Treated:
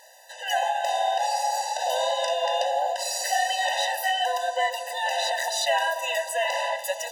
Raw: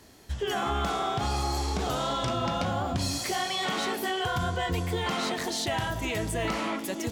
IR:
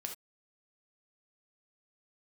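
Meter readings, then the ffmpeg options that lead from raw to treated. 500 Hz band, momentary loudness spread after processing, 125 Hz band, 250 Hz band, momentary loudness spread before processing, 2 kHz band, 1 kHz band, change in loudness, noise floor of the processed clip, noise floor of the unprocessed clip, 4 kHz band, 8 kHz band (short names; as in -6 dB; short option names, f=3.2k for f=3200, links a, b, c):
+5.0 dB, 4 LU, under -40 dB, under -40 dB, 2 LU, +5.5 dB, +6.0 dB, +4.0 dB, -42 dBFS, -38 dBFS, +4.0 dB, +5.5 dB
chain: -af "afftfilt=real='re*eq(mod(floor(b*sr/1024/510),2),1)':imag='im*eq(mod(floor(b*sr/1024/510),2),1)':win_size=1024:overlap=0.75,volume=8dB"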